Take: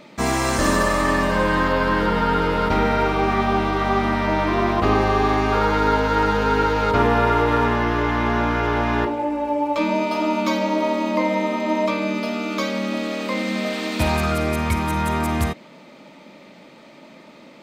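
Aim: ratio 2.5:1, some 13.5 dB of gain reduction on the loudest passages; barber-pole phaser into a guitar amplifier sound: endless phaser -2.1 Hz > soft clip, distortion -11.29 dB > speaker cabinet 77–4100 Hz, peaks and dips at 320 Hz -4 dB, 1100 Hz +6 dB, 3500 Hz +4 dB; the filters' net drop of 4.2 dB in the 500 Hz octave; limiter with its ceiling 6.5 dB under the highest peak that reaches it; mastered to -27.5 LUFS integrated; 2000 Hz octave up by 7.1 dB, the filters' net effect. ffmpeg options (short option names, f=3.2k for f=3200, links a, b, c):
-filter_complex "[0:a]equalizer=f=500:t=o:g=-5.5,equalizer=f=2k:t=o:g=8.5,acompressor=threshold=-35dB:ratio=2.5,alimiter=level_in=0.5dB:limit=-24dB:level=0:latency=1,volume=-0.5dB,asplit=2[a][b];[b]afreqshift=-2.1[c];[a][c]amix=inputs=2:normalize=1,asoftclip=threshold=-36.5dB,highpass=77,equalizer=f=320:t=q:w=4:g=-4,equalizer=f=1.1k:t=q:w=4:g=6,equalizer=f=3.5k:t=q:w=4:g=4,lowpass=f=4.1k:w=0.5412,lowpass=f=4.1k:w=1.3066,volume=12dB"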